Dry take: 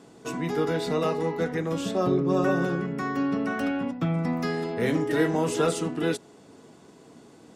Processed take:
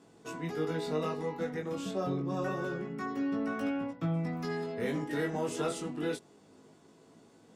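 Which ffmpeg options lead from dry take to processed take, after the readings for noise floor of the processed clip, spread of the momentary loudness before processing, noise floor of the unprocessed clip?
-60 dBFS, 5 LU, -52 dBFS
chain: -af "flanger=delay=18:depth=2.8:speed=0.27,volume=-5dB"

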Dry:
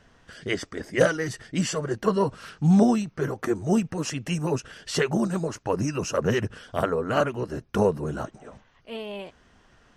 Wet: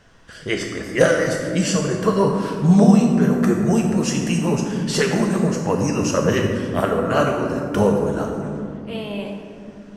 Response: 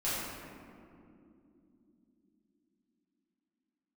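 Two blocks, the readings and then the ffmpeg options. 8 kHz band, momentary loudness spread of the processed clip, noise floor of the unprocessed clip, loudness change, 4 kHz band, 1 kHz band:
+7.5 dB, 13 LU, -60 dBFS, +6.5 dB, +6.0 dB, +5.5 dB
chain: -filter_complex "[0:a]asplit=2[a][b];[1:a]atrim=start_sample=2205,asetrate=41013,aresample=44100,highshelf=f=4.3k:g=8[c];[b][c]afir=irnorm=-1:irlink=0,volume=-8dB[d];[a][d]amix=inputs=2:normalize=0,volume=1.5dB"

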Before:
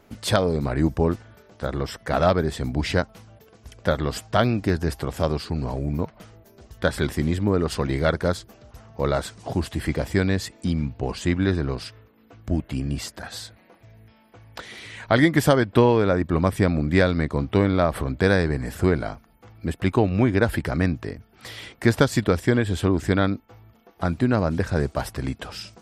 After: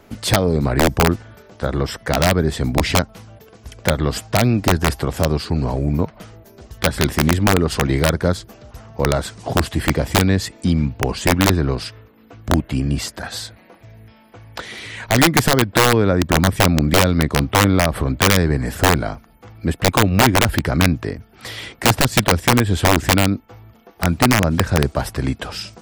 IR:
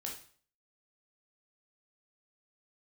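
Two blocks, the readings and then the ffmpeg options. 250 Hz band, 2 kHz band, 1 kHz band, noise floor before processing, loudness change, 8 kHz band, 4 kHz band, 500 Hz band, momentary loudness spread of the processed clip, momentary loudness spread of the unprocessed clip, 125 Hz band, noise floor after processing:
+4.0 dB, +7.5 dB, +8.0 dB, -56 dBFS, +5.5 dB, +14.5 dB, +11.5 dB, +2.5 dB, 13 LU, 14 LU, +5.5 dB, -49 dBFS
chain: -filter_complex "[0:a]acrossover=split=300[a][b];[b]acompressor=threshold=-27dB:ratio=2[c];[a][c]amix=inputs=2:normalize=0,aeval=exprs='(mod(4.22*val(0)+1,2)-1)/4.22':c=same,volume=7dB"

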